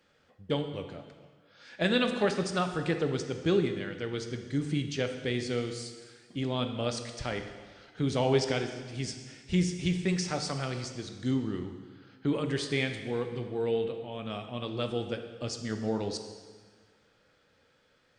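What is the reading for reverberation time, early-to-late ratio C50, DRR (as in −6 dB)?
1.6 s, 8.0 dB, 6.0 dB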